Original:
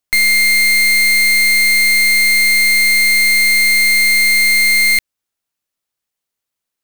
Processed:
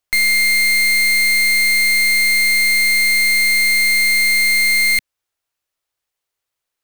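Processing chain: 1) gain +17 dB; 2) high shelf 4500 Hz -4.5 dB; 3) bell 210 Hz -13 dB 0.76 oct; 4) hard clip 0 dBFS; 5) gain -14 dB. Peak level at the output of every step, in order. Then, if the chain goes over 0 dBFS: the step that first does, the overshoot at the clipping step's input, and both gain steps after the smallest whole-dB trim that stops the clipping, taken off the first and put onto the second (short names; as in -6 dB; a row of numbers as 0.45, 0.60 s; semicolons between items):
+5.5, +5.5, +6.0, 0.0, -14.0 dBFS; step 1, 6.0 dB; step 1 +11 dB, step 5 -8 dB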